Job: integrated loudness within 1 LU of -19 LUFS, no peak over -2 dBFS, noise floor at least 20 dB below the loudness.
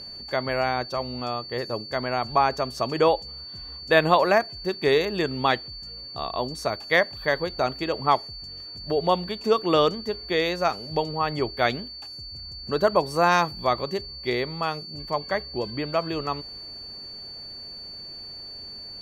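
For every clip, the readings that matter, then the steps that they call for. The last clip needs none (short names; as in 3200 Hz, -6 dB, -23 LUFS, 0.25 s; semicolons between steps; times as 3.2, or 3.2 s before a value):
steady tone 4500 Hz; tone level -37 dBFS; loudness -25.0 LUFS; peak -4.5 dBFS; loudness target -19.0 LUFS
-> notch 4500 Hz, Q 30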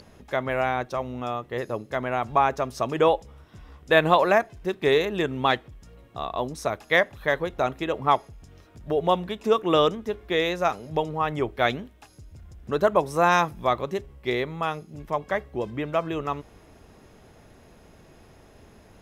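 steady tone none; loudness -25.0 LUFS; peak -4.0 dBFS; loudness target -19.0 LUFS
-> gain +6 dB; limiter -2 dBFS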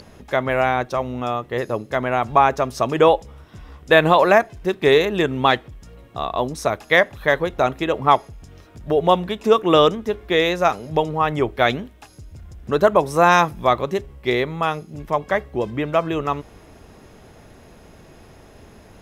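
loudness -19.5 LUFS; peak -2.0 dBFS; noise floor -47 dBFS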